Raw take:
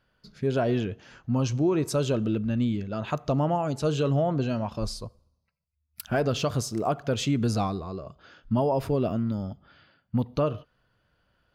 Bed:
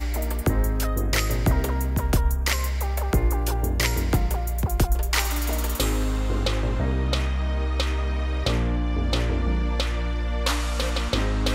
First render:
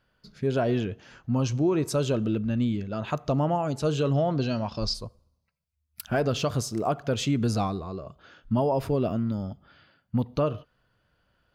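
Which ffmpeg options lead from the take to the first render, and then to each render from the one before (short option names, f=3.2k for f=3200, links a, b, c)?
-filter_complex "[0:a]asplit=3[a][b][c];[a]afade=t=out:st=4.13:d=0.02[d];[b]lowpass=f=5k:t=q:w=3.2,afade=t=in:st=4.13:d=0.02,afade=t=out:st=4.93:d=0.02[e];[c]afade=t=in:st=4.93:d=0.02[f];[d][e][f]amix=inputs=3:normalize=0,asettb=1/sr,asplit=3[g][h][i];[g]atrim=end=7.654[j];[h]atrim=start=7.65:end=8.53,asetpts=PTS-STARTPTS,afade=t=in:d=0.004:c=qsin,afade=t=out:st=0.876:d=0.004:c=qsin,bandreject=f=4.9k:w=12[k];[i]atrim=start=8.526[l];[j][k]acrossfade=d=0.004:c1=hsin:c2=qsin[m];[m][l]acrossfade=d=0.004:c1=qsin:c2=hsin"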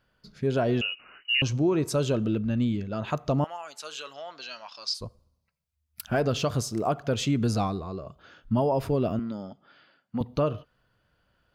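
-filter_complex "[0:a]asettb=1/sr,asplit=3[a][b][c];[a]atrim=end=0.814[d];[b]atrim=start=0.81:end=1.42,asetpts=PTS-STARTPTS,afade=t=in:d=0.004:c=qsin,afade=t=out:st=0.606:d=0.004:c=qsin,lowpass=f=2.6k:t=q:w=0.5098,lowpass=f=2.6k:t=q:w=0.6013,lowpass=f=2.6k:t=q:w=0.9,lowpass=f=2.6k:t=q:w=2.563,afreqshift=-3000[e];[c]atrim=start=1.416[f];[d][e]acrossfade=d=0.004:c1=hsin:c2=qsin[g];[g][f]acrossfade=d=0.004:c1=qsin:c2=hsin,asettb=1/sr,asplit=3[h][i][j];[h]atrim=end=3.444[k];[i]atrim=start=3.44:end=5.01,asetpts=PTS-STARTPTS,afade=t=in:d=0.004:c=qsin,afade=t=out:st=1.566:d=0.004:c=qsin,highpass=1.4k[l];[j]atrim=start=5.006[m];[k][l]acrossfade=d=0.004:c1=hsin:c2=qsin[n];[n][m]acrossfade=d=0.004:c1=qsin:c2=hsin,asettb=1/sr,asplit=3[o][p][q];[o]atrim=end=9.194[r];[p]atrim=start=9.19:end=10.21,asetpts=PTS-STARTPTS,afade=t=in:d=0.004:c=qsin,afade=t=out:st=1.016:d=0.004:c=qsin,highpass=250,lowpass=7.8k[s];[q]atrim=start=10.206[t];[r][s]acrossfade=d=0.004:c1=hsin:c2=qsin[u];[u][t]acrossfade=d=0.004:c1=qsin:c2=hsin"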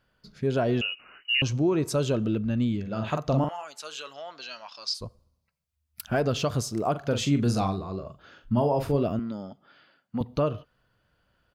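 -filter_complex "[0:a]asplit=3[a][b][c];[a]afade=t=out:st=2.85:d=0.02[d];[b]asplit=2[e][f];[f]adelay=45,volume=-5dB[g];[e][g]amix=inputs=2:normalize=0,afade=t=in:st=2.85:d=0.02,afade=t=out:st=3.63:d=0.02[h];[c]afade=t=in:st=3.63:d=0.02[i];[d][h][i]amix=inputs=3:normalize=0,asplit=3[j][k][l];[j]afade=t=out:st=6.94:d=0.02[m];[k]asplit=2[n][o];[o]adelay=42,volume=-8dB[p];[n][p]amix=inputs=2:normalize=0,afade=t=in:st=6.94:d=0.02,afade=t=out:st=9.03:d=0.02[q];[l]afade=t=in:st=9.03:d=0.02[r];[m][q][r]amix=inputs=3:normalize=0"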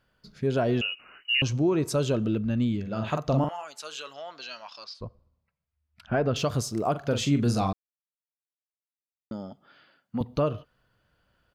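-filter_complex "[0:a]asettb=1/sr,asplit=3[a][b][c];[a]atrim=end=4.844[d];[b]atrim=start=4.84:end=6.36,asetpts=PTS-STARTPTS,afade=t=in:d=0.004:c=qsin,afade=t=out:st=1.516:d=0.004:c=qsin,lowpass=2.5k[e];[c]atrim=start=6.356[f];[d][e]acrossfade=d=0.004:c1=hsin:c2=qsin[g];[g][f]acrossfade=d=0.004:c1=qsin:c2=hsin,asplit=3[h][i][j];[h]atrim=end=7.73,asetpts=PTS-STARTPTS,afade=t=out:st=7.726:d=0.004:c=hsin[k];[i]atrim=start=7.73:end=9.31,asetpts=PTS-STARTPTS,volume=0[l];[j]atrim=start=9.31,asetpts=PTS-STARTPTS,afade=t=in:d=0.004:c=hsin[m];[k][l][m]concat=n=3:v=0:a=1"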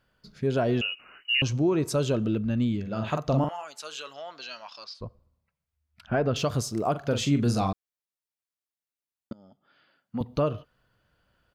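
-filter_complex "[0:a]asplit=2[a][b];[a]atrim=end=9.33,asetpts=PTS-STARTPTS,afade=t=out:st=9.326:d=0.004:c=hsin:silence=0.0749894[c];[b]atrim=start=9.33,asetpts=PTS-STARTPTS,afade=t=in:d=1.01:silence=0.0749894[d];[c][d]concat=n=2:v=0:a=1"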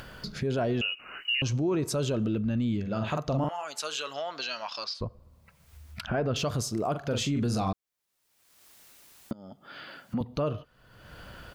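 -af "acompressor=mode=upward:threshold=-26dB:ratio=2.5,alimiter=limit=-20.5dB:level=0:latency=1:release=17"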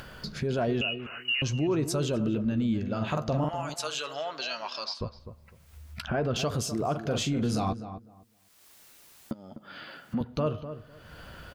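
-filter_complex "[0:a]asplit=2[a][b];[b]adelay=13,volume=-13.5dB[c];[a][c]amix=inputs=2:normalize=0,asplit=2[d][e];[e]adelay=252,lowpass=f=1.4k:p=1,volume=-10.5dB,asplit=2[f][g];[g]adelay=252,lowpass=f=1.4k:p=1,volume=0.19,asplit=2[h][i];[i]adelay=252,lowpass=f=1.4k:p=1,volume=0.19[j];[d][f][h][j]amix=inputs=4:normalize=0"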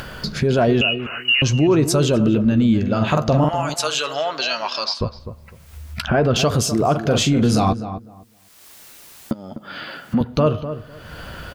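-af "volume=11.5dB"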